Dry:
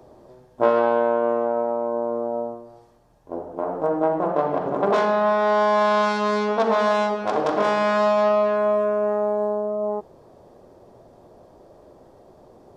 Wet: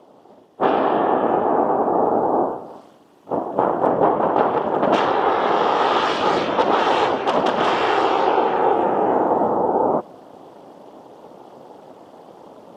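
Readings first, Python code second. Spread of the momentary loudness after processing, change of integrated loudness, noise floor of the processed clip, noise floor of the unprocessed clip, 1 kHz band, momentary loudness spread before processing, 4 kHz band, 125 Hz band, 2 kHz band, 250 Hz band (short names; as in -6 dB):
3 LU, +2.5 dB, -49 dBFS, -52 dBFS, +5.5 dB, 9 LU, +7.5 dB, +2.5 dB, +2.0 dB, +4.5 dB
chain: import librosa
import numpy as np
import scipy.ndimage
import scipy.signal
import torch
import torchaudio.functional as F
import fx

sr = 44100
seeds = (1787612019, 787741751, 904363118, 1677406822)

y = fx.low_shelf(x, sr, hz=370.0, db=5.0)
y = fx.whisperise(y, sr, seeds[0])
y = fx.peak_eq(y, sr, hz=3000.0, db=11.5, octaves=0.37)
y = fx.rider(y, sr, range_db=10, speed_s=0.5)
y = y * np.sin(2.0 * np.pi * 190.0 * np.arange(len(y)) / sr)
y = scipy.signal.sosfilt(scipy.signal.butter(2, 240.0, 'highpass', fs=sr, output='sos'), y)
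y = F.gain(torch.from_numpy(y), 5.0).numpy()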